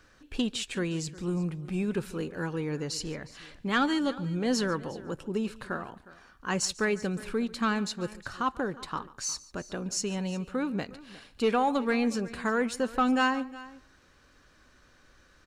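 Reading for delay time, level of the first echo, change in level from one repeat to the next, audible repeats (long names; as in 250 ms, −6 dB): 143 ms, −20.5 dB, repeats not evenly spaced, 2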